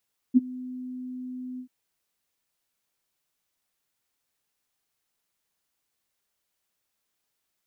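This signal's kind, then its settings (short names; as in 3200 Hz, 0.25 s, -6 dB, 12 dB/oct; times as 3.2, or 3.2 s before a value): ADSR sine 253 Hz, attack 30 ms, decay 24 ms, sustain -22.5 dB, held 1.25 s, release 87 ms -11 dBFS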